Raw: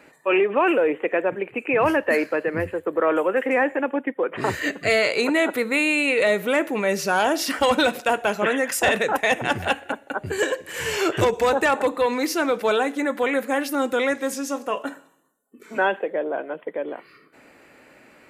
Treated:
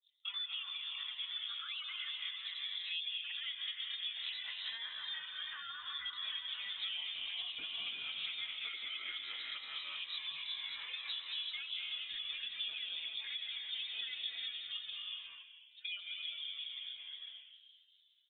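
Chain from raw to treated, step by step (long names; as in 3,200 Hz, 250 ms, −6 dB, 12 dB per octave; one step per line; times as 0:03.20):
time-frequency cells dropped at random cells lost 27%
source passing by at 0:06.70, 13 m/s, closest 13 metres
dynamic equaliser 290 Hz, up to −6 dB, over −42 dBFS, Q 0.8
on a send: echo with shifted repeats 218 ms, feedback 58%, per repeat +64 Hz, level −8.5 dB
on the sum: reverb whose tail is shaped and stops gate 410 ms rising, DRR 3 dB
downward compressor 16 to 1, threshold −39 dBFS, peak gain reduction 22.5 dB
granular cloud 166 ms, grains 21 per second, spray 15 ms, pitch spread up and down by 0 semitones
treble cut that deepens with the level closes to 1,600 Hz, closed at −45.5 dBFS
surface crackle 14 per second −56 dBFS
low-pass that shuts in the quiet parts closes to 430 Hz, open at −46.5 dBFS
voice inversion scrambler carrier 3,900 Hz
level +5.5 dB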